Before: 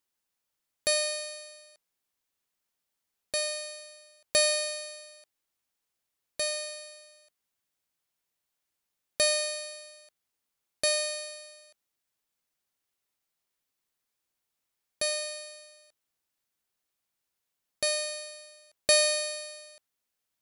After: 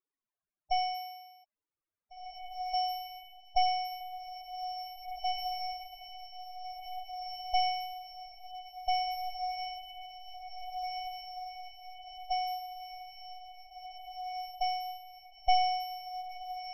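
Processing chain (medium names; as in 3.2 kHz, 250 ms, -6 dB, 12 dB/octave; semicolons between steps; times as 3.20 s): tracing distortion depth 0.049 ms; treble shelf 4 kHz -12 dB; loudest bins only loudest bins 8; wide varispeed 1.22×; echo that smears into a reverb 1896 ms, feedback 61%, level -5.5 dB; trim +1.5 dB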